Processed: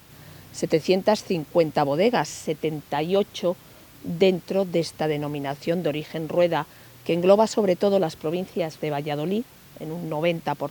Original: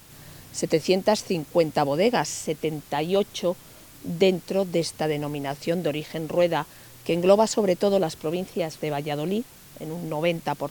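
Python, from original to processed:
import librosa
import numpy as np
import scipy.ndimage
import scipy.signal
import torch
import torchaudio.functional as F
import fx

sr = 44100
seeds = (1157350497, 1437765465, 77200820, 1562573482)

y = scipy.signal.sosfilt(scipy.signal.butter(2, 46.0, 'highpass', fs=sr, output='sos'), x)
y = fx.peak_eq(y, sr, hz=8900.0, db=-7.0, octaves=1.4)
y = y * librosa.db_to_amplitude(1.0)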